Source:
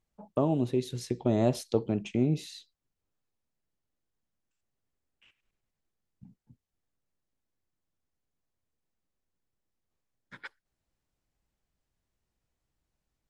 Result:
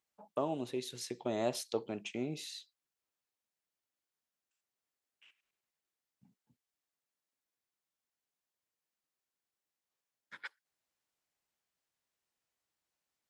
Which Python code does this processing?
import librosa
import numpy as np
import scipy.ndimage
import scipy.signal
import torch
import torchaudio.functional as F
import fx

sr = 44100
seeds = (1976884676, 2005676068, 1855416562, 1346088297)

y = fx.highpass(x, sr, hz=960.0, slope=6)